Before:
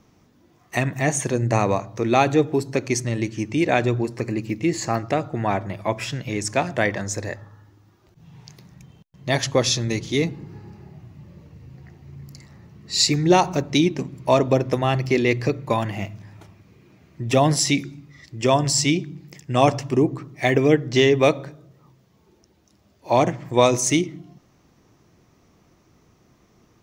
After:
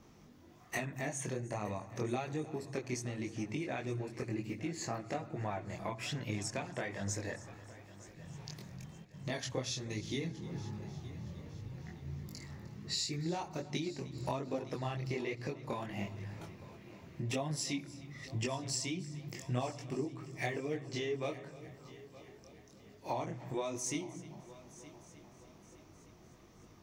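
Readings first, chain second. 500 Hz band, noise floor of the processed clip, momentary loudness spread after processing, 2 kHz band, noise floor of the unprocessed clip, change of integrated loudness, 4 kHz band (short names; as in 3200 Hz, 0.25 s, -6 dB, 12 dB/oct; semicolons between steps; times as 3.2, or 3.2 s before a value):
-19.0 dB, -59 dBFS, 17 LU, -16.5 dB, -59 dBFS, -18.5 dB, -16.5 dB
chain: compressor 8:1, threshold -33 dBFS, peak gain reduction 22 dB; chorus voices 2, 1.2 Hz, delay 22 ms, depth 3 ms; multi-head echo 0.306 s, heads first and third, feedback 57%, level -19 dB; gain +1 dB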